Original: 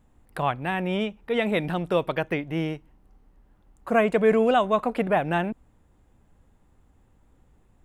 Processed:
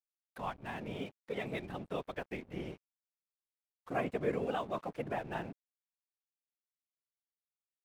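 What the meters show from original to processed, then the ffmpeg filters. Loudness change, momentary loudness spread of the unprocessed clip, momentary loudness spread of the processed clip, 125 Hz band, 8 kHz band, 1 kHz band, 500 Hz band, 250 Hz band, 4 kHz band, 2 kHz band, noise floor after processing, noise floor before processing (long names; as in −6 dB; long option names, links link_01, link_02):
−15.0 dB, 10 LU, 10 LU, −13.5 dB, can't be measured, −14.5 dB, −15.0 dB, −15.0 dB, −14.5 dB, −14.5 dB, below −85 dBFS, −61 dBFS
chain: -af "afftfilt=real='hypot(re,im)*cos(2*PI*random(0))':imag='hypot(re,im)*sin(2*PI*random(1))':win_size=512:overlap=0.75,aeval=exprs='sgn(val(0))*max(abs(val(0))-0.00355,0)':channel_layout=same,volume=-8dB"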